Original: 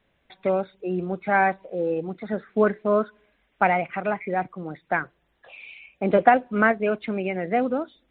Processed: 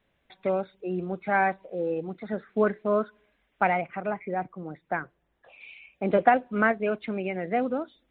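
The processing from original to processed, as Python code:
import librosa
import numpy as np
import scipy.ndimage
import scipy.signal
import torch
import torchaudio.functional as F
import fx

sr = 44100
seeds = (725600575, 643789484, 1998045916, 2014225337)

y = fx.high_shelf(x, sr, hz=2300.0, db=-10.0, at=(3.81, 5.61))
y = F.gain(torch.from_numpy(y), -3.5).numpy()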